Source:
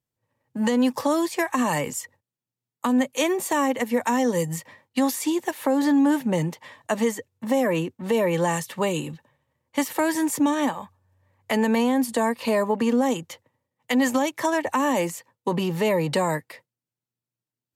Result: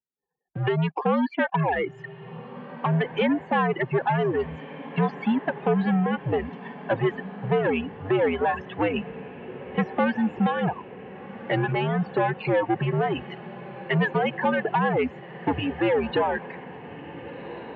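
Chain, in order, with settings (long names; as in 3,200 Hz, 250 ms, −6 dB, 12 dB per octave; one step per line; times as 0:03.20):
reverb reduction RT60 0.7 s
spectral peaks only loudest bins 32
leveller curve on the samples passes 2
reverb reduction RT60 0.78 s
on a send: feedback delay with all-pass diffusion 1,558 ms, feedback 60%, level −15 dB
on the sum: single-sideband voice off tune −90 Hz 240–3,300 Hz
level −3 dB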